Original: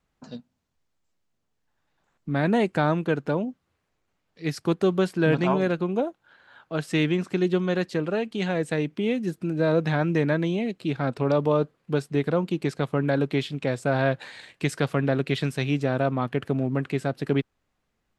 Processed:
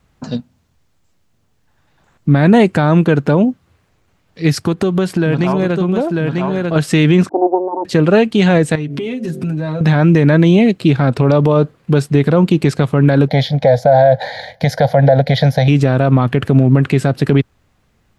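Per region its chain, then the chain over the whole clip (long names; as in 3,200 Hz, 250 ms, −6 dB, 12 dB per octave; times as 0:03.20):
0:04.52–0:06.76: single-tap delay 944 ms −10 dB + downward compressor 4 to 1, threshold −29 dBFS
0:07.29–0:07.85: lower of the sound and its delayed copy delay 0.94 ms + Chebyshev band-pass filter 280–920 Hz, order 4
0:08.75–0:09.81: comb filter 7.4 ms, depth 74% + hum removal 47.5 Hz, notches 15 + downward compressor 20 to 1, threshold −34 dBFS
0:13.28–0:15.68: flat-topped bell 620 Hz +14 dB 1 octave + phaser with its sweep stopped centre 1,800 Hz, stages 8
whole clip: parametric band 94 Hz +8 dB 1.7 octaves; boost into a limiter +16 dB; level −1 dB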